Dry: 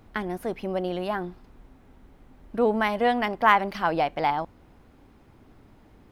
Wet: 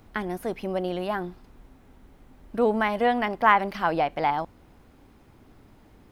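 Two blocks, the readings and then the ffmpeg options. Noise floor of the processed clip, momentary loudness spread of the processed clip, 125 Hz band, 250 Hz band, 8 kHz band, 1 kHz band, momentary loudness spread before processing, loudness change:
-55 dBFS, 12 LU, 0.0 dB, 0.0 dB, n/a, 0.0 dB, 12 LU, 0.0 dB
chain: -filter_complex "[0:a]acrossover=split=3000[a][b];[b]acompressor=threshold=-46dB:ratio=4:attack=1:release=60[c];[a][c]amix=inputs=2:normalize=0,highshelf=f=4.6k:g=5"

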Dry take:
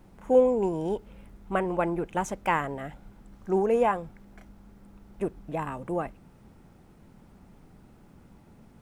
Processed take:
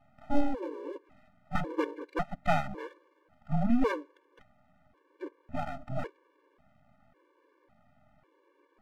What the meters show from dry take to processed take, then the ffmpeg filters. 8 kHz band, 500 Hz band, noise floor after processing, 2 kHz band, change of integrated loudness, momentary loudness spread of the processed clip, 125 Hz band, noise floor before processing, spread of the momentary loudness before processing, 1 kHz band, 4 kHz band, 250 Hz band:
under -10 dB, -11.0 dB, -70 dBFS, -4.0 dB, -6.5 dB, 17 LU, -0.5 dB, -55 dBFS, 14 LU, -6.0 dB, n/a, -2.0 dB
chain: -af "highpass=f=390:t=q:w=0.5412,highpass=f=390:t=q:w=1.307,lowpass=f=2.4k:t=q:w=0.5176,lowpass=f=2.4k:t=q:w=0.7071,lowpass=f=2.4k:t=q:w=1.932,afreqshift=-220,aeval=exprs='max(val(0),0)':c=same,afftfilt=real='re*gt(sin(2*PI*0.91*pts/sr)*(1-2*mod(floor(b*sr/1024/300),2)),0)':imag='im*gt(sin(2*PI*0.91*pts/sr)*(1-2*mod(floor(b*sr/1024/300),2)),0)':win_size=1024:overlap=0.75,volume=4.5dB"

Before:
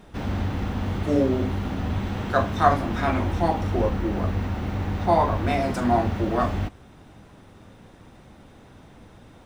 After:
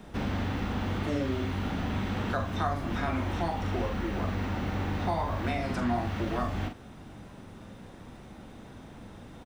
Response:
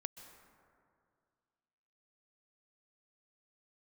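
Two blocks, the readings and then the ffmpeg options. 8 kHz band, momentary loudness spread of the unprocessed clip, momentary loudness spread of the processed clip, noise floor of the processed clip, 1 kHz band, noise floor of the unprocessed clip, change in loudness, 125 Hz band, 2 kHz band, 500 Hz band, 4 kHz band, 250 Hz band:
-4.5 dB, 7 LU, 17 LU, -48 dBFS, -8.5 dB, -50 dBFS, -7.0 dB, -6.0 dB, -4.0 dB, -9.0 dB, -2.5 dB, -6.0 dB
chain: -filter_complex "[0:a]asplit=2[a][b];[b]adelay=42,volume=-7dB[c];[a][c]amix=inputs=2:normalize=0,acrossover=split=160|1100|4900[d][e][f][g];[d]acompressor=threshold=-34dB:ratio=4[h];[e]acompressor=threshold=-34dB:ratio=4[i];[f]acompressor=threshold=-37dB:ratio=4[j];[g]acompressor=threshold=-58dB:ratio=4[k];[h][i][j][k]amix=inputs=4:normalize=0,equalizer=f=220:t=o:w=0.65:g=3.5"

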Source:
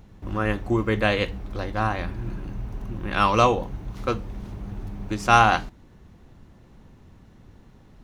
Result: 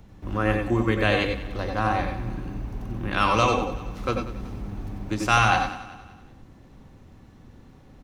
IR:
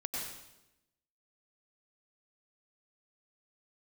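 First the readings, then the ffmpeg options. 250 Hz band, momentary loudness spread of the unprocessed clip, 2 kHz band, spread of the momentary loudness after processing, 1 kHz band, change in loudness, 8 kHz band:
+0.5 dB, 18 LU, +0.5 dB, 15 LU, -2.0 dB, -1.0 dB, +1.5 dB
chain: -filter_complex "[0:a]acrossover=split=150|1300[a][b][c];[b]alimiter=limit=-16.5dB:level=0:latency=1[d];[a][d][c]amix=inputs=3:normalize=0,aecho=1:1:189|378|567|756:0.158|0.065|0.0266|0.0109[e];[1:a]atrim=start_sample=2205,atrim=end_sample=4410[f];[e][f]afir=irnorm=-1:irlink=0,volume=2.5dB"

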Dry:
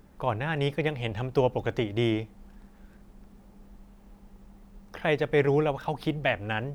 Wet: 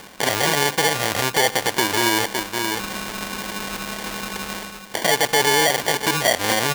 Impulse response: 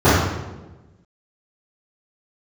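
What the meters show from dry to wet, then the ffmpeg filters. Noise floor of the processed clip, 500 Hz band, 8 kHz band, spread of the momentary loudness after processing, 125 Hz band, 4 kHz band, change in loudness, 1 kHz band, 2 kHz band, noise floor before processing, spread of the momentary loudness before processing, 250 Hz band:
-39 dBFS, +4.0 dB, n/a, 11 LU, -1.5 dB, +18.5 dB, +7.5 dB, +12.5 dB, +13.0 dB, -54 dBFS, 8 LU, +3.5 dB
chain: -filter_complex "[0:a]asplit=2[a][b];[b]aecho=0:1:560:0.119[c];[a][c]amix=inputs=2:normalize=0,acrusher=samples=34:mix=1:aa=0.000001,highpass=f=1.4k:p=1,asoftclip=type=tanh:threshold=-12dB,areverse,acompressor=mode=upward:threshold=-36dB:ratio=2.5,areverse,alimiter=level_in=24dB:limit=-1dB:release=50:level=0:latency=1,volume=-1dB"

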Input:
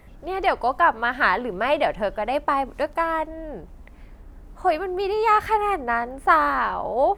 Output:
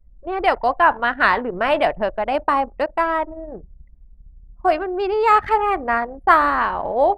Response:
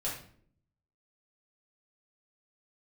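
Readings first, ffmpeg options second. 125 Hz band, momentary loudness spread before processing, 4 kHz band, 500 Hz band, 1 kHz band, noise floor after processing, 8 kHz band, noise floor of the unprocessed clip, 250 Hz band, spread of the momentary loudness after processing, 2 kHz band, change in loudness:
+1.0 dB, 8 LU, +2.5 dB, +3.0 dB, +3.0 dB, -48 dBFS, n/a, -45 dBFS, +3.0 dB, 8 LU, +3.0 dB, +3.0 dB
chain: -filter_complex "[0:a]asplit=2[a][b];[1:a]atrim=start_sample=2205[c];[b][c]afir=irnorm=-1:irlink=0,volume=-17.5dB[d];[a][d]amix=inputs=2:normalize=0,anlmdn=63.1,volume=2.5dB"

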